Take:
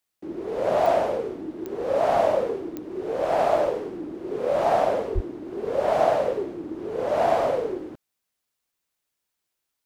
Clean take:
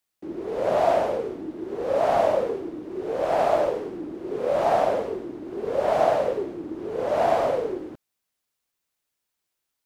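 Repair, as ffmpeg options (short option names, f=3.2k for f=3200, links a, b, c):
-filter_complex "[0:a]adeclick=t=4,asplit=3[a][b][c];[a]afade=t=out:st=5.14:d=0.02[d];[b]highpass=f=140:w=0.5412,highpass=f=140:w=1.3066,afade=t=in:st=5.14:d=0.02,afade=t=out:st=5.26:d=0.02[e];[c]afade=t=in:st=5.26:d=0.02[f];[d][e][f]amix=inputs=3:normalize=0"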